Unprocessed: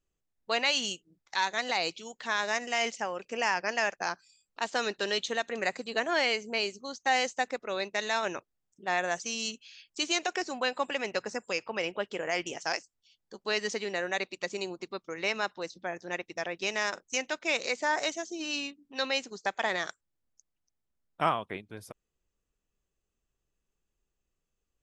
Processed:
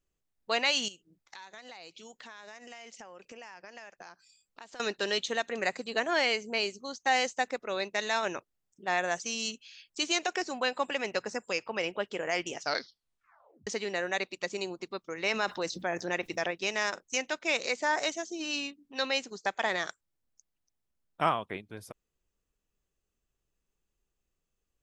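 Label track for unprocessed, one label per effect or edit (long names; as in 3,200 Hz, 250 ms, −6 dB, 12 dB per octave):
0.880000	4.800000	downward compressor, threshold −45 dBFS
12.570000	12.570000	tape stop 1.10 s
15.260000	16.510000	envelope flattener amount 50%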